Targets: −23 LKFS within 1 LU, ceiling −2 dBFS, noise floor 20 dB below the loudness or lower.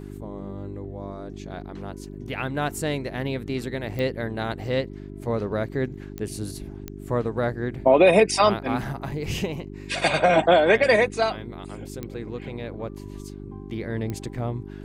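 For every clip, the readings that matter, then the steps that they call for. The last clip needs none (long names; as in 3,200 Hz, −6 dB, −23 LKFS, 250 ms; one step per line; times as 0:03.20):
number of clicks 5; mains hum 50 Hz; hum harmonics up to 400 Hz; level of the hum −35 dBFS; integrated loudness −24.0 LKFS; sample peak −5.0 dBFS; target loudness −23.0 LKFS
→ click removal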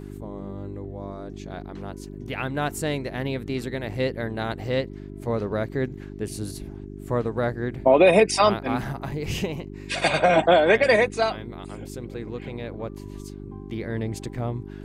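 number of clicks 0; mains hum 50 Hz; hum harmonics up to 400 Hz; level of the hum −35 dBFS
→ hum removal 50 Hz, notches 8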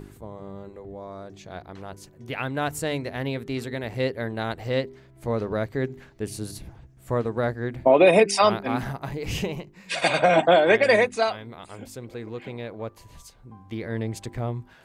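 mains hum none found; integrated loudness −24.0 LKFS; sample peak −5.0 dBFS; target loudness −23.0 LKFS
→ level +1 dB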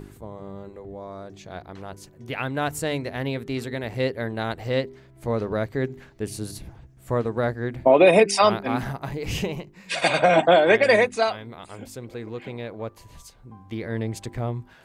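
integrated loudness −23.0 LKFS; sample peak −4.0 dBFS; background noise floor −52 dBFS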